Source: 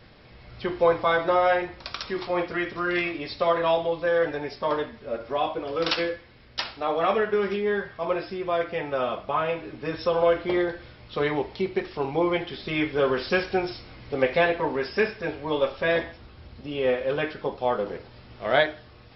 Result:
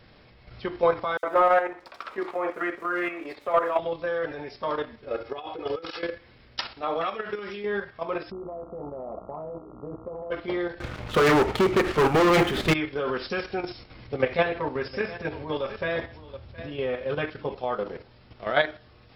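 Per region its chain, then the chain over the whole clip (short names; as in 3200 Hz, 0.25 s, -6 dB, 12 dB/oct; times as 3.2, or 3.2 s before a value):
1.17–3.79 three-band isolator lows -20 dB, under 280 Hz, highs -16 dB, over 2300 Hz + sample leveller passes 1 + bands offset in time highs, lows 60 ms, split 4200 Hz
5.08–6.03 HPF 90 Hz 6 dB/oct + comb 2.4 ms, depth 59% + negative-ratio compressor -28 dBFS, ratio -0.5
7.01–7.66 high shelf 2200 Hz +10 dB + compressor 12:1, threshold -24 dBFS
8.3–10.3 steep low-pass 860 Hz + compressor, threshold -26 dBFS + buzz 60 Hz, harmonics 23, -46 dBFS -2 dB/oct
10.8–12.74 LPF 2400 Hz + sample leveller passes 5
14.07–17.55 bell 100 Hz +8 dB 1.1 oct + echo 0.717 s -16 dB
whole clip: dynamic EQ 1300 Hz, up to +5 dB, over -41 dBFS, Q 4.6; level quantiser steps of 9 dB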